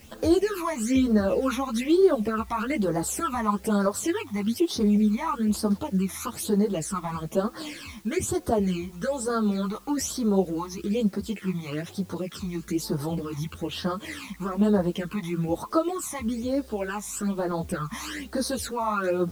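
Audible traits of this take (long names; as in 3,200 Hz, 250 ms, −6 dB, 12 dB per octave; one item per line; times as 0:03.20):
phaser sweep stages 12, 1.1 Hz, lowest notch 480–2,700 Hz
a quantiser's noise floor 10 bits, dither triangular
a shimmering, thickened sound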